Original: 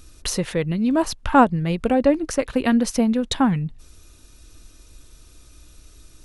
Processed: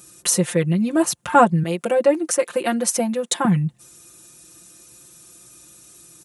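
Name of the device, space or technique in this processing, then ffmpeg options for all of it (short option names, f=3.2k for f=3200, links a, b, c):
budget condenser microphone: -filter_complex "[0:a]asettb=1/sr,asplit=3[a][b][c];[a]atrim=end=1.634[d];[b]atrim=start=1.63:end=3.45,asetpts=PTS-STARTPTS,afade=t=in:d=0.004:c=qsin,afade=t=out:st=1.816:d=0.004:c=qsin,highpass=290[e];[c]atrim=start=3.446[f];[d][e]acrossfade=d=0.004:c1=hsin:c2=qsin[g];[g][f]acrossfade=d=0.004:c1=qsin:c2=hsin,highpass=f=97:w=0.5412,highpass=f=97:w=1.3066,highshelf=f=6k:t=q:w=1.5:g=7.5,aecho=1:1:5.7:0.98,volume=-1dB"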